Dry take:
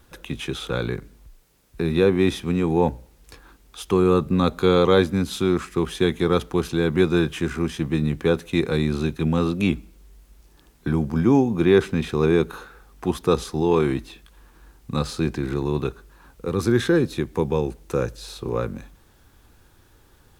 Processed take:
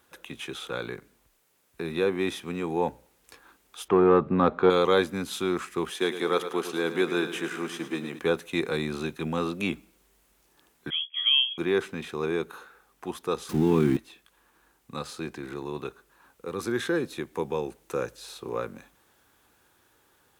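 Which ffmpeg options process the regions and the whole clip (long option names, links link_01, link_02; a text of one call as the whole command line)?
ffmpeg -i in.wav -filter_complex "[0:a]asettb=1/sr,asplit=3[link_01][link_02][link_03];[link_01]atrim=end=3.884[link_04];[link_02]atrim=start=3.88:end=4.7,asetpts=PTS-STARTPTS,afade=type=in:duration=0.004:curve=qsin,afade=type=out:start_time=0.816:duration=0.004:curve=qsin,lowpass=1600,acontrast=63[link_05];[link_03]atrim=start=4.696[link_06];[link_04][link_05]acrossfade=duration=0.004:curve1=hsin:curve2=qsin[link_07];[link_07][link_06]acrossfade=duration=0.004:curve1=qsin:curve2=hsin,asettb=1/sr,asplit=3[link_08][link_09][link_10];[link_08]atrim=end=5.904[link_11];[link_09]atrim=start=5.9:end=8.19,asetpts=PTS-STARTPTS,afade=type=in:duration=0.004:curve=qsin,afade=type=out:start_time=2.286:duration=0.004:curve=qsin,highpass=230,aecho=1:1:108|216|324|432|540|648:0.282|0.161|0.0916|0.0522|0.0298|0.017,atrim=end_sample=100989[link_12];[link_10]atrim=start=8.186[link_13];[link_11][link_12]acrossfade=duration=0.004:curve1=hsin:curve2=qsin[link_14];[link_14][link_13]acrossfade=duration=0.004:curve1=qsin:curve2=hsin,asettb=1/sr,asplit=3[link_15][link_16][link_17];[link_15]atrim=end=10.904[link_18];[link_16]atrim=start=10.9:end=11.58,asetpts=PTS-STARTPTS,afade=type=in:duration=0.004:curve=qsin,afade=type=out:start_time=0.676:duration=0.004:curve=qsin,agate=range=-33dB:threshold=-19dB:ratio=3:release=100:detection=peak,highpass=170,lowpass=frequency=3000:width_type=q:width=0.5098,lowpass=frequency=3000:width_type=q:width=0.6013,lowpass=frequency=3000:width_type=q:width=0.9,lowpass=frequency=3000:width_type=q:width=2.563,afreqshift=-3500[link_19];[link_17]atrim=start=11.576[link_20];[link_18][link_19]acrossfade=duration=0.004:curve1=hsin:curve2=qsin[link_21];[link_21][link_20]acrossfade=duration=0.004:curve1=qsin:curve2=hsin,asettb=1/sr,asplit=3[link_22][link_23][link_24];[link_22]atrim=end=13.494[link_25];[link_23]atrim=start=13.49:end=13.97,asetpts=PTS-STARTPTS,afade=type=in:duration=0.004:curve=qsin,afade=type=out:start_time=0.476:duration=0.004:curve=qsin,aeval=exprs='val(0)+0.5*0.0376*sgn(val(0))':channel_layout=same,lowshelf=frequency=360:width_type=q:width=1.5:gain=13[link_26];[link_24]atrim=start=13.966[link_27];[link_25][link_26]acrossfade=duration=0.004:curve1=hsin:curve2=qsin[link_28];[link_28][link_27]acrossfade=duration=0.004:curve1=qsin:curve2=hsin,dynaudnorm=framelen=780:gausssize=9:maxgain=11.5dB,highpass=frequency=520:poles=1,equalizer=frequency=4800:width=1.5:gain=-3.5,volume=-3.5dB" out.wav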